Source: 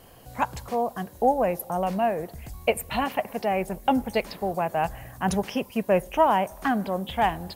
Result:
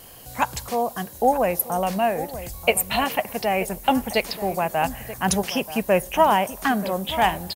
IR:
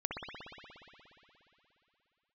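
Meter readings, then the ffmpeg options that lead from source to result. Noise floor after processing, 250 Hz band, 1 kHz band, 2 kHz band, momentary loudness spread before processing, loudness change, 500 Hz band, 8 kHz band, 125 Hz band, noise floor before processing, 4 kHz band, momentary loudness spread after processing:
-42 dBFS, +1.5 dB, +3.0 dB, +6.0 dB, 8 LU, +3.0 dB, +2.5 dB, +12.0 dB, +2.0 dB, -49 dBFS, +8.5 dB, 7 LU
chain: -filter_complex "[0:a]highshelf=f=2500:g=11,asplit=2[s0][s1];[s1]adelay=932.9,volume=0.224,highshelf=f=4000:g=-21[s2];[s0][s2]amix=inputs=2:normalize=0,volume=1.19"

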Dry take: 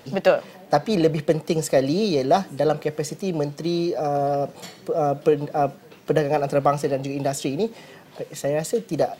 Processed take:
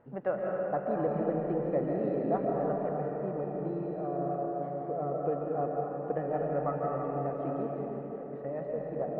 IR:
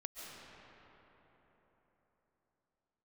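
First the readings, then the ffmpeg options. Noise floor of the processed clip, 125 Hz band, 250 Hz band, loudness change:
-40 dBFS, -9.5 dB, -9.0 dB, -10.0 dB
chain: -filter_complex "[0:a]lowpass=f=1600:w=0.5412,lowpass=f=1600:w=1.3066[s0];[1:a]atrim=start_sample=2205[s1];[s0][s1]afir=irnorm=-1:irlink=0,volume=0.398"

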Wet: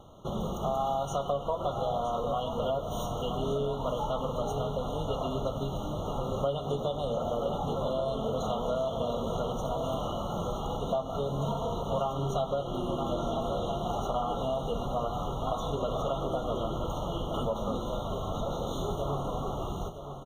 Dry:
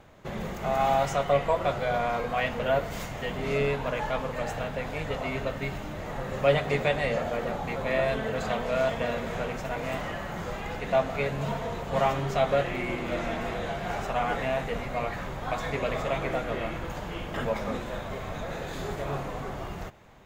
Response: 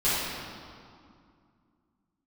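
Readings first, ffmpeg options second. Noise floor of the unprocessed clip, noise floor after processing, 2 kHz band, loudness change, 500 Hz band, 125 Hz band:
-37 dBFS, -37 dBFS, under -25 dB, -2.5 dB, -2.5 dB, -0.5 dB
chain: -af "aecho=1:1:970:0.266,acompressor=threshold=0.0398:ratio=10,afftfilt=real='re*eq(mod(floor(b*sr/1024/1400),2),0)':imag='im*eq(mod(floor(b*sr/1024/1400),2),0)':win_size=1024:overlap=0.75,volume=1.26"

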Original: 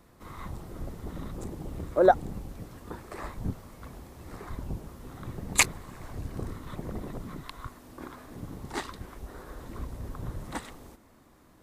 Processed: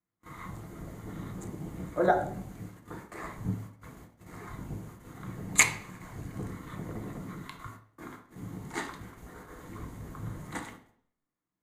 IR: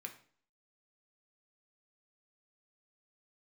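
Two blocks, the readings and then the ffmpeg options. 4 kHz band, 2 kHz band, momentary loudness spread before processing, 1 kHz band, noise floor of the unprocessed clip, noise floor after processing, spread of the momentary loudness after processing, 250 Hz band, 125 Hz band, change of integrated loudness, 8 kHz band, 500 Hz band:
-3.5 dB, +1.5 dB, 21 LU, -3.0 dB, -58 dBFS, under -85 dBFS, 21 LU, -1.0 dB, -1.0 dB, -1.5 dB, +1.0 dB, -5.0 dB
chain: -filter_complex "[0:a]agate=range=0.0316:threshold=0.00631:ratio=16:detection=peak[s0];[1:a]atrim=start_sample=2205,asetrate=38808,aresample=44100[s1];[s0][s1]afir=irnorm=-1:irlink=0,volume=1.33"

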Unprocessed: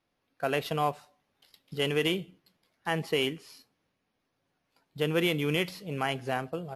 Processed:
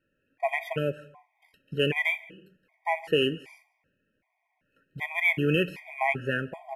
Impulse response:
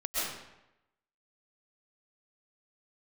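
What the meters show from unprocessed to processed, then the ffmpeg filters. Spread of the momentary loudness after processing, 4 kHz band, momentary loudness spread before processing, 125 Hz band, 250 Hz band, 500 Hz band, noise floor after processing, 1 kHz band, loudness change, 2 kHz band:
11 LU, -1.0 dB, 11 LU, +1.0 dB, +0.5 dB, +1.5 dB, -78 dBFS, +0.5 dB, +2.5 dB, +6.5 dB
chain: -filter_complex "[0:a]asuperstop=centerf=1200:order=8:qfactor=5.3,highshelf=f=3100:t=q:w=3:g=-9.5,asplit=2[s0][s1];[1:a]atrim=start_sample=2205,afade=t=out:st=0.42:d=0.01,atrim=end_sample=18963[s2];[s1][s2]afir=irnorm=-1:irlink=0,volume=0.0398[s3];[s0][s3]amix=inputs=2:normalize=0,afftfilt=real='re*gt(sin(2*PI*1.3*pts/sr)*(1-2*mod(floor(b*sr/1024/630),2)),0)':imag='im*gt(sin(2*PI*1.3*pts/sr)*(1-2*mod(floor(b*sr/1024/630),2)),0)':win_size=1024:overlap=0.75,volume=1.68"

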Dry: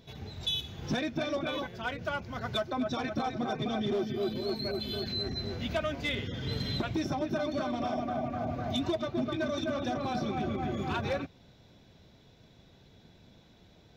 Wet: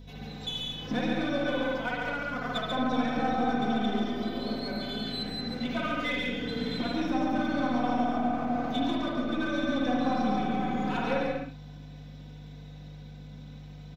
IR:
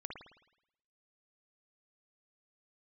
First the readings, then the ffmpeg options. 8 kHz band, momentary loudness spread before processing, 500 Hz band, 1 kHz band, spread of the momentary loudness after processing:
no reading, 3 LU, +0.5 dB, +5.5 dB, 18 LU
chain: -filter_complex "[0:a]acrossover=split=4100[s0][s1];[s1]acompressor=threshold=0.00158:ratio=4:attack=1:release=60[s2];[s0][s2]amix=inputs=2:normalize=0,highpass=f=120:w=0.5412,highpass=f=120:w=1.3066,aecho=1:1:4:0.97,areverse,acompressor=mode=upward:threshold=0.00282:ratio=2.5,areverse,aeval=exprs='val(0)+0.00708*(sin(2*PI*50*n/s)+sin(2*PI*2*50*n/s)/2+sin(2*PI*3*50*n/s)/3+sin(2*PI*4*50*n/s)/4+sin(2*PI*5*50*n/s)/5)':c=same,asplit=2[s3][s4];[s4]aeval=exprs='clip(val(0),-1,0.015)':c=same,volume=0.668[s5];[s3][s5]amix=inputs=2:normalize=0,aecho=1:1:139.9|177.8:0.708|0.316[s6];[1:a]atrim=start_sample=2205,atrim=end_sample=6174[s7];[s6][s7]afir=irnorm=-1:irlink=0,volume=0.794"

